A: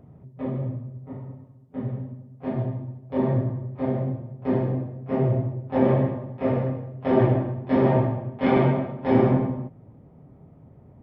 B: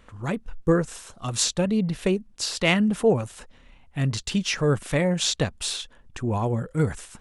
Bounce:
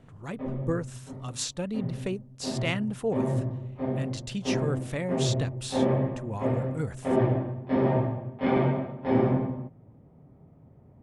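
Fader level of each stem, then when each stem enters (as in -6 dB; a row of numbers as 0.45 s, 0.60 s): -4.5 dB, -9.0 dB; 0.00 s, 0.00 s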